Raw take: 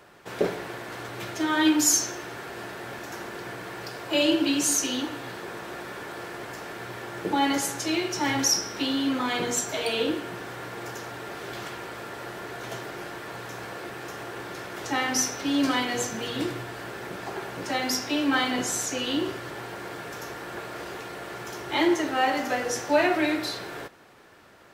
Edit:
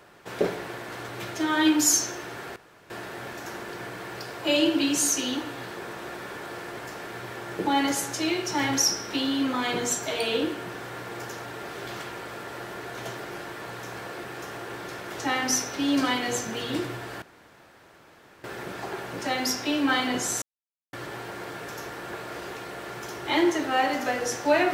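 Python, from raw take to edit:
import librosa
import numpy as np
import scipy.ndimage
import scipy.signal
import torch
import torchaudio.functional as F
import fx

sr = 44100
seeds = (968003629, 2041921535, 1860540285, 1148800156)

y = fx.edit(x, sr, fx.insert_room_tone(at_s=2.56, length_s=0.34),
    fx.insert_room_tone(at_s=16.88, length_s=1.22),
    fx.silence(start_s=18.86, length_s=0.51), tone=tone)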